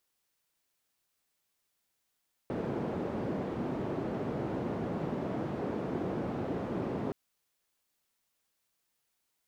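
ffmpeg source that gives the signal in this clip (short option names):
-f lavfi -i "anoisesrc=c=white:d=4.62:r=44100:seed=1,highpass=f=130,lowpass=f=390,volume=-11dB"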